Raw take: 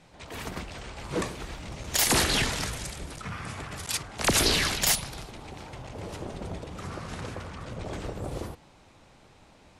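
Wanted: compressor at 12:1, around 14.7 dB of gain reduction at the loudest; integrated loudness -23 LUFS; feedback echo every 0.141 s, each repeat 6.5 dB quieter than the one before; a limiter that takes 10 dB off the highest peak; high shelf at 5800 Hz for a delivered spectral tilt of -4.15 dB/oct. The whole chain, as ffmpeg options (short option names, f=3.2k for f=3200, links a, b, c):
-af "highshelf=f=5.8k:g=-6,acompressor=threshold=-35dB:ratio=12,alimiter=level_in=7dB:limit=-24dB:level=0:latency=1,volume=-7dB,aecho=1:1:141|282|423|564|705|846:0.473|0.222|0.105|0.0491|0.0231|0.0109,volume=17.5dB"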